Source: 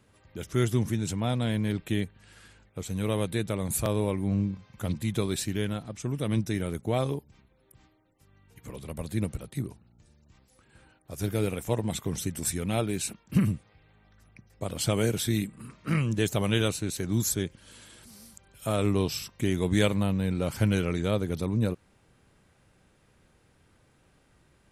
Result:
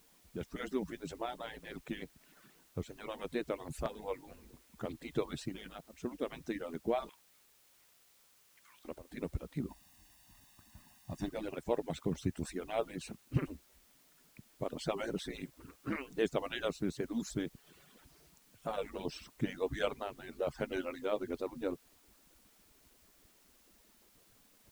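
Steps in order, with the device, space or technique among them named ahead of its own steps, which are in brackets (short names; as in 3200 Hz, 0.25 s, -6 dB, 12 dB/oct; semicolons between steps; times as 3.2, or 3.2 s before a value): median-filter separation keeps percussive; LPF 1300 Hz 6 dB/oct; 7.09–8.85 steep high-pass 1200 Hz; worn cassette (LPF 8100 Hz; wow and flutter; level dips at 5.81/8.99, 0.119 s -13 dB; white noise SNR 26 dB); 9.69–11.29 comb 1.1 ms, depth 95%; gain -1.5 dB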